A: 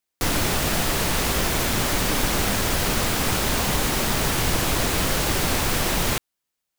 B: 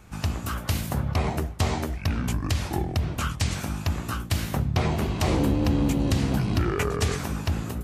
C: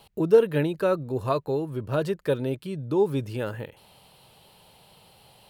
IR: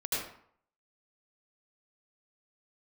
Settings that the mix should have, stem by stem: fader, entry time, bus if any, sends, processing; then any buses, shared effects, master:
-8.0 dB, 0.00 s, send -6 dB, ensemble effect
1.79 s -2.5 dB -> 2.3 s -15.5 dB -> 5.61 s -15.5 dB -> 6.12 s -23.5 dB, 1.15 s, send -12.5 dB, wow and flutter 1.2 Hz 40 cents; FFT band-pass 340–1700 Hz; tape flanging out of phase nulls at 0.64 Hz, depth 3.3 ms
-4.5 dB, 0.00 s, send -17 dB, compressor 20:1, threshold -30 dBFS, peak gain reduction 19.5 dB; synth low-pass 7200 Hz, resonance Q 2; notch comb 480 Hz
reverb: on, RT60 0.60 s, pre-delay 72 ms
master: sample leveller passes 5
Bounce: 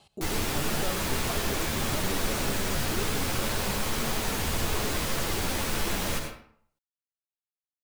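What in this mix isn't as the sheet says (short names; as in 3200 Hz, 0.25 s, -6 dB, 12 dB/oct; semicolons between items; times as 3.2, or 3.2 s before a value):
stem B: muted; master: missing sample leveller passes 5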